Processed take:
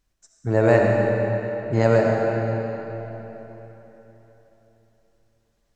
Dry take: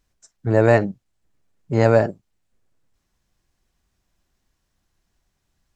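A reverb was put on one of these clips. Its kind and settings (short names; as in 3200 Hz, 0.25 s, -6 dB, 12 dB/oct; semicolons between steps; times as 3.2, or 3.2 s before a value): digital reverb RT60 3.8 s, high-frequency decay 0.8×, pre-delay 30 ms, DRR -0.5 dB; gain -3 dB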